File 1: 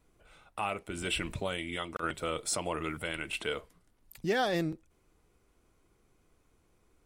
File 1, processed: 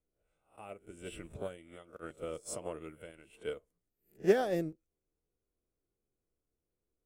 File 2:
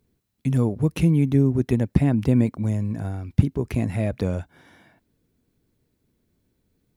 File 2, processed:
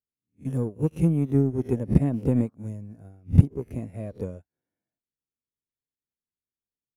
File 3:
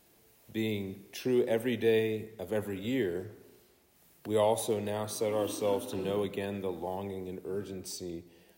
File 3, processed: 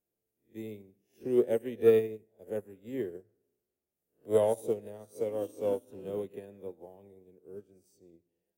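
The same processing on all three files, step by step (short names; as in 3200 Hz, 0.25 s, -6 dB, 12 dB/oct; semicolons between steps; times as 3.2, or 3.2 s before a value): spectral swells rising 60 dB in 0.38 s; graphic EQ 500/1000/2000/4000 Hz +5/-7/-4/-11 dB; in parallel at -4 dB: soft clip -17.5 dBFS; on the sum: upward expander 2.5:1, over -36 dBFS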